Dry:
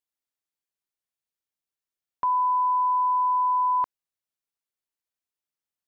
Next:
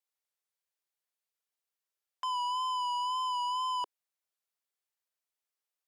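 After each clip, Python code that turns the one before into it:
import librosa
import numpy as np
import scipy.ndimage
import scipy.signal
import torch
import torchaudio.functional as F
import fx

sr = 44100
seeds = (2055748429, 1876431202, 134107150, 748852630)

y = fx.wow_flutter(x, sr, seeds[0], rate_hz=2.1, depth_cents=39.0)
y = scipy.signal.sosfilt(scipy.signal.butter(6, 400.0, 'highpass', fs=sr, output='sos'), y)
y = 10.0 ** (-31.5 / 20.0) * np.tanh(y / 10.0 ** (-31.5 / 20.0))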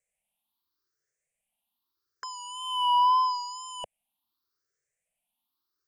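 y = fx.spec_ripple(x, sr, per_octave=0.52, drift_hz=0.81, depth_db=23)
y = fx.low_shelf(y, sr, hz=330.0, db=8.5)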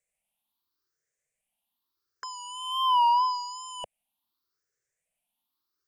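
y = fx.record_warp(x, sr, rpm=33.33, depth_cents=100.0)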